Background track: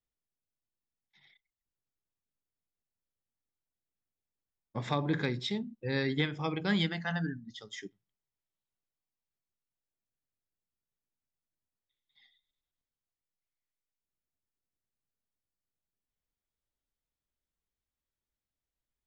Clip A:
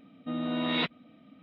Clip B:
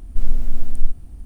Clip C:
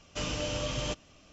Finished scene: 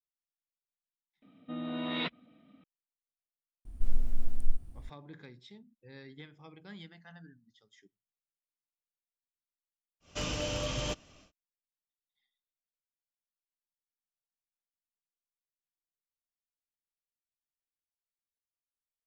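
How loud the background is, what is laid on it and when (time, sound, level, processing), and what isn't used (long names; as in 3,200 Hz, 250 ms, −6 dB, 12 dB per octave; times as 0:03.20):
background track −19 dB
0:01.22: overwrite with A −5.5 dB
0:03.65: mix in B −10 dB
0:10.00: mix in C −1 dB, fades 0.10 s + hard clipping −25 dBFS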